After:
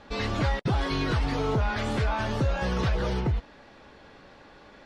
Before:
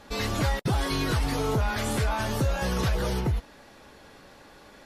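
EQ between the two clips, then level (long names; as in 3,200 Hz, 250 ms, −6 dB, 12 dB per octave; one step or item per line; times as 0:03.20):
low-pass filter 4,200 Hz 12 dB per octave
0.0 dB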